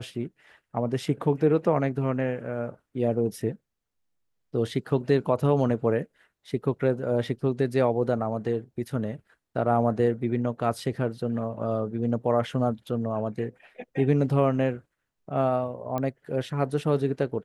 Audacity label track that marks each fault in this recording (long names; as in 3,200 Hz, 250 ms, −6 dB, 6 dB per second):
15.980000	15.980000	click −17 dBFS